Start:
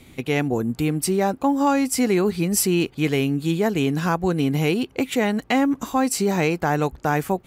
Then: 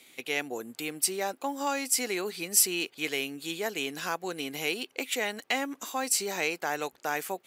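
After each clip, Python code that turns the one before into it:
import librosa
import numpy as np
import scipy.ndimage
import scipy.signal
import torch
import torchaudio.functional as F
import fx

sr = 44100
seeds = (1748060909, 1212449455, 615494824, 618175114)

y = scipy.signal.sosfilt(scipy.signal.butter(2, 680.0, 'highpass', fs=sr, output='sos'), x)
y = fx.peak_eq(y, sr, hz=1000.0, db=-9.0, octaves=1.7)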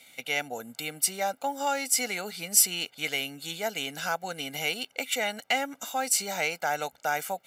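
y = x + 0.74 * np.pad(x, (int(1.4 * sr / 1000.0), 0))[:len(x)]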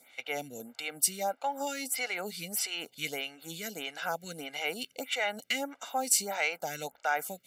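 y = fx.stagger_phaser(x, sr, hz=1.6)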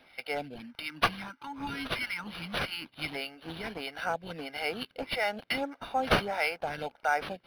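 y = fx.spec_box(x, sr, start_s=0.55, length_s=2.6, low_hz=330.0, high_hz=840.0, gain_db=-27)
y = np.interp(np.arange(len(y)), np.arange(len(y))[::6], y[::6])
y = y * 10.0 ** (2.5 / 20.0)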